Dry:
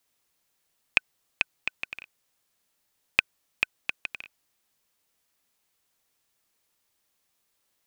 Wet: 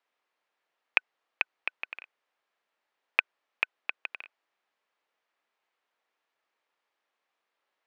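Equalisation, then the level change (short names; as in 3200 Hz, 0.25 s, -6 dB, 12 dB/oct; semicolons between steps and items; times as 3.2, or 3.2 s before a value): BPF 480–2200 Hz; +2.0 dB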